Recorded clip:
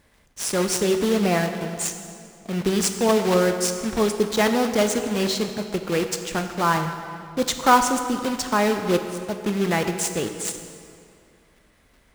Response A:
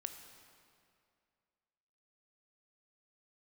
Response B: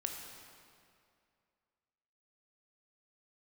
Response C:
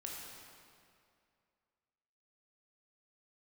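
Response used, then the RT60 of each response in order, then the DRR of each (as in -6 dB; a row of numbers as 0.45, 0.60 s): A; 2.3, 2.4, 2.4 s; 6.5, 2.0, -2.5 dB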